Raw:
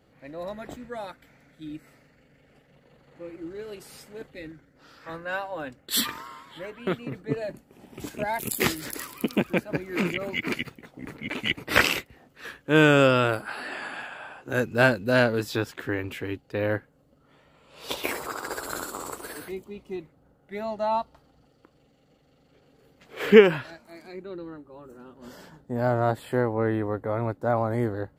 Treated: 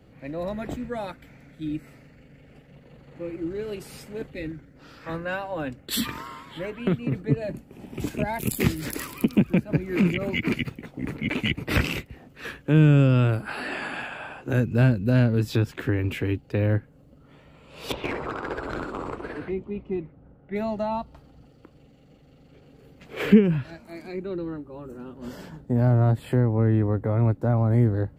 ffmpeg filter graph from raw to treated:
-filter_complex "[0:a]asettb=1/sr,asplit=3[s0][s1][s2];[s0]atrim=end=17.924[s3];[s1]atrim=start=17.92:end=20.56,asetpts=PTS-STARTPTS,afade=t=in:d=0.004:c=qsin,afade=t=out:st=2.636:d=0.004:c=qsin,lowpass=2200,volume=21.1,asoftclip=hard,volume=0.0473[s4];[s2]atrim=start=20.556[s5];[s3][s4]acrossfade=d=0.004:c1=hsin:c2=qsin[s6];[s6][s5]acrossfade=d=0.004:c1=qsin:c2=hsin,lowshelf=f=370:g=10.5,acrossover=split=230[s7][s8];[s8]acompressor=threshold=0.0398:ratio=5[s9];[s7][s9]amix=inputs=2:normalize=0,equalizer=f=2500:t=o:w=0.51:g=4.5,volume=1.19"

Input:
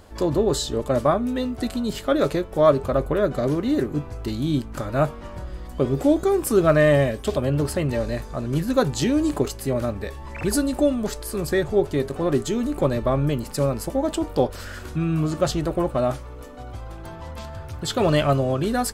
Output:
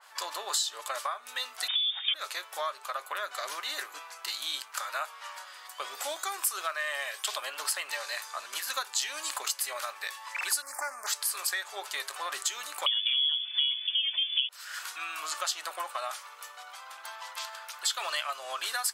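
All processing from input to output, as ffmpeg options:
-filter_complex "[0:a]asettb=1/sr,asplit=3[s0][s1][s2];[s0]atrim=end=1.684[s3];[s1]atrim=start=1.68:end=2.14,asetpts=PTS-STARTPTS,afade=t=in:d=0.004:c=qsin,afade=t=out:st=0.456:d=0.004:c=qsin,asoftclip=type=hard:threshold=0.158,lowpass=f=3100:t=q:w=0.5098,lowpass=f=3100:t=q:w=0.6013,lowpass=f=3100:t=q:w=0.9,lowpass=f=3100:t=q:w=2.563,afreqshift=-3700[s4];[s2]atrim=start=2.136[s5];[s3][s4]acrossfade=d=0.004:c1=hsin:c2=qsin[s6];[s6][s5]acrossfade=d=0.004:c1=qsin:c2=hsin,asettb=1/sr,asplit=3[s7][s8][s9];[s7]atrim=end=10.624[s10];[s8]atrim=start=10.62:end=11.07,asetpts=PTS-STARTPTS,afade=t=in:d=0.004:c=qsin,afade=t=out:st=0.446:d=0.004:c=qsin,asoftclip=type=hard:threshold=0.112,asuperstop=centerf=3300:order=8:qfactor=1.2[s11];[s9]atrim=start=11.066[s12];[s10][s11]acrossfade=d=0.004:c1=hsin:c2=qsin[s13];[s13][s12]acrossfade=d=0.004:c1=qsin:c2=hsin,asettb=1/sr,asplit=3[s14][s15][s16];[s14]atrim=end=12.864[s17];[s15]atrim=start=12.86:end=14.49,asetpts=PTS-STARTPTS,afade=t=in:d=0.004:c=qsin,afade=t=out:st=1.626:d=0.004:c=qsin,lowshelf=f=160:g=7.5,aecho=1:1:7:0.9,atrim=end_sample=71883,lowpass=f=3000:t=q:w=0.5098,lowpass=f=3000:t=q:w=0.6013,lowpass=f=3000:t=q:w=0.9,lowpass=f=3000:t=q:w=2.563,afreqshift=-3500[s18];[s16]atrim=start=14.486[s19];[s17][s18]acrossfade=d=0.004:c1=hsin:c2=qsin[s20];[s20][s19]acrossfade=d=0.004:c1=qsin:c2=hsin,highpass=f=1000:w=0.5412,highpass=f=1000:w=1.3066,acompressor=threshold=0.02:ratio=6,adynamicequalizer=threshold=0.00251:dfrequency=2600:dqfactor=0.7:tfrequency=2600:tqfactor=0.7:attack=5:release=100:ratio=0.375:range=2.5:mode=boostabove:tftype=highshelf,volume=1.41"

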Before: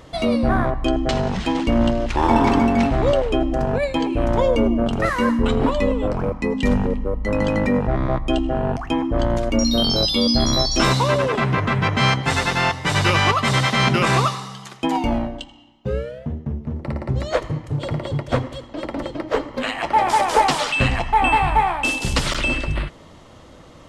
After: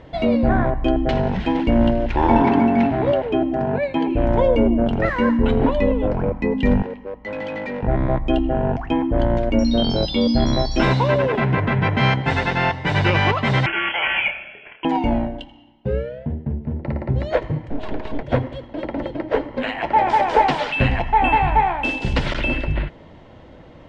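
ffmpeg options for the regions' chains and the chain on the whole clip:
-filter_complex "[0:a]asettb=1/sr,asplit=3[s0][s1][s2];[s0]atrim=end=2.424[s3];[s1]atrim=start=2.42:end=4.08,asetpts=PTS-STARTPTS,afade=t=in:d=0.004:c=qsin,afade=t=out:st=1.656:d=0.004:c=qsin,highpass=120,highshelf=f=6000:g=-7,bandreject=f=510:w=7[s4];[s2]atrim=start=4.076[s5];[s3][s4]acrossfade=d=0.004:c1=hsin:c2=qsin[s6];[s6][s5]acrossfade=d=0.004:c1=qsin:c2=hsin,asettb=1/sr,asplit=3[s7][s8][s9];[s7]atrim=end=6.824[s10];[s8]atrim=start=6.82:end=7.83,asetpts=PTS-STARTPTS,afade=t=in:d=0.004:c=qsin,afade=t=out:st=1.006:d=0.004:c=qsin,highpass=f=850:p=1,asoftclip=type=hard:threshold=0.0562[s11];[s9]atrim=start=7.826[s12];[s10][s11]acrossfade=d=0.004:c1=hsin:c2=qsin[s13];[s13][s12]acrossfade=d=0.004:c1=qsin:c2=hsin,asettb=1/sr,asplit=3[s14][s15][s16];[s14]atrim=end=13.664[s17];[s15]atrim=start=13.66:end=14.85,asetpts=PTS-STARTPTS,afade=t=in:d=0.004:c=qsin,afade=t=out:st=1.186:d=0.004:c=qsin,highpass=490,asplit=2[s18][s19];[s19]adelay=30,volume=0.501[s20];[s18][s20]amix=inputs=2:normalize=0,atrim=end_sample=52479,lowpass=f=3000:t=q:w=0.5098,lowpass=f=3000:t=q:w=0.6013,lowpass=f=3000:t=q:w=0.9,lowpass=f=3000:t=q:w=2.563,afreqshift=-3500[s21];[s16]atrim=start=14.846[s22];[s17][s21]acrossfade=d=0.004:c1=hsin:c2=qsin[s23];[s23][s22]acrossfade=d=0.004:c1=qsin:c2=hsin,asettb=1/sr,asplit=3[s24][s25][s26];[s24]atrim=end=17.704[s27];[s25]atrim=start=17.7:end=18.23,asetpts=PTS-STARTPTS,afade=t=in:d=0.004:c=qsin,afade=t=out:st=0.526:d=0.004:c=qsin,highpass=f=53:p=1,aeval=exprs='abs(val(0))':c=same,aeval=exprs='val(0)+0.0126*sin(2*PI*630*n/s)':c=same[s28];[s26]atrim=start=18.226[s29];[s27][s28]acrossfade=d=0.004:c1=hsin:c2=qsin[s30];[s30][s29]acrossfade=d=0.004:c1=qsin:c2=hsin,lowpass=2500,equalizer=f=1200:t=o:w=0.2:g=-13.5,volume=1.19"

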